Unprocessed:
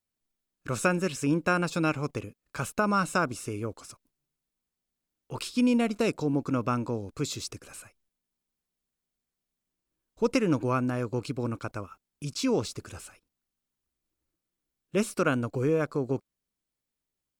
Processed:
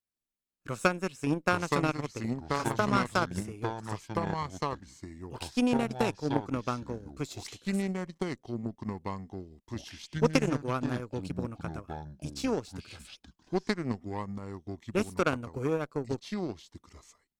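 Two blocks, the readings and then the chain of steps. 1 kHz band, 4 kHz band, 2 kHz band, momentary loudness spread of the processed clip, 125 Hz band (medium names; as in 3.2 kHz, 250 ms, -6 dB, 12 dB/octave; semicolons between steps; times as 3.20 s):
0.0 dB, -1.0 dB, -1.5 dB, 15 LU, -1.0 dB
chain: ever faster or slower copies 650 ms, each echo -4 st, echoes 2; Chebyshev shaper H 3 -18 dB, 7 -30 dB, 8 -32 dB, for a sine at -9.5 dBFS; transient shaper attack +3 dB, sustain -5 dB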